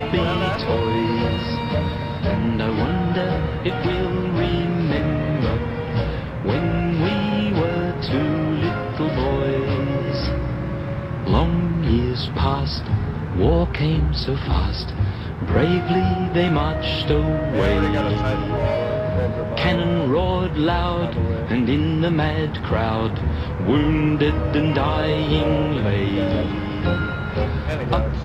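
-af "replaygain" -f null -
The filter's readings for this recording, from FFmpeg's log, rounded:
track_gain = +3.4 dB
track_peak = 0.344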